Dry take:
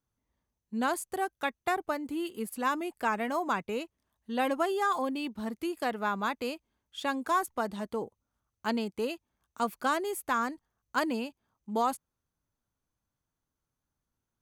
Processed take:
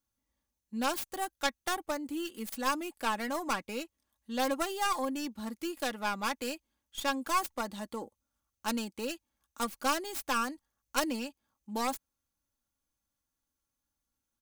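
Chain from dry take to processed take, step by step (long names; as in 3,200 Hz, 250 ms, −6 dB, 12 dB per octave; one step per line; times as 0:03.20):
stylus tracing distortion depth 0.29 ms
high-shelf EQ 2,900 Hz +9 dB
comb filter 3.6 ms, depth 49%
level −5 dB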